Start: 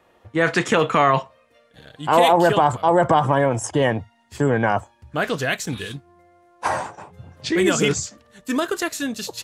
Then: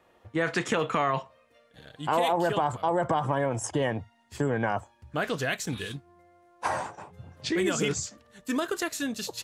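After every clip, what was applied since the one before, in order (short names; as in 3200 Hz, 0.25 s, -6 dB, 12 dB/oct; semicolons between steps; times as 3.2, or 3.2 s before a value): compressor 2:1, threshold -21 dBFS, peak gain reduction 6.5 dB; gain -4.5 dB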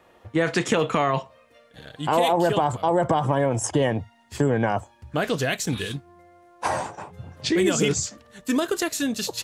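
dynamic EQ 1400 Hz, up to -5 dB, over -40 dBFS, Q 0.91; gain +6.5 dB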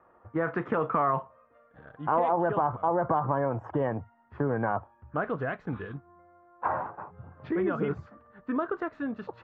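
ladder low-pass 1500 Hz, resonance 50%; gain +2 dB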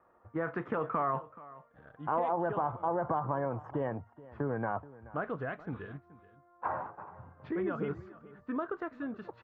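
echo 0.428 s -19 dB; gain -5.5 dB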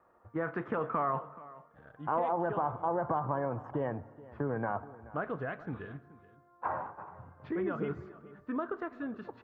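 reverb RT60 1.3 s, pre-delay 49 ms, DRR 18 dB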